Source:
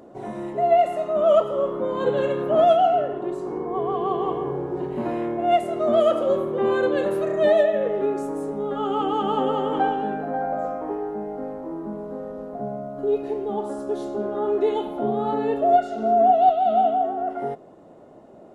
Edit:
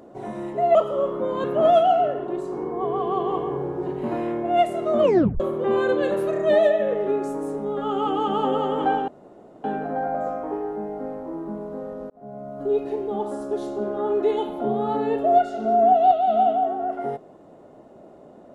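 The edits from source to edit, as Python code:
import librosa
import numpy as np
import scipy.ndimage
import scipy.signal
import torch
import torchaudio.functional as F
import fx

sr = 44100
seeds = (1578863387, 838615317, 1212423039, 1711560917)

y = fx.edit(x, sr, fx.cut(start_s=0.75, length_s=0.6),
    fx.cut(start_s=2.04, length_s=0.34),
    fx.tape_stop(start_s=5.94, length_s=0.4),
    fx.insert_room_tone(at_s=10.02, length_s=0.56),
    fx.fade_in_span(start_s=12.48, length_s=0.51), tone=tone)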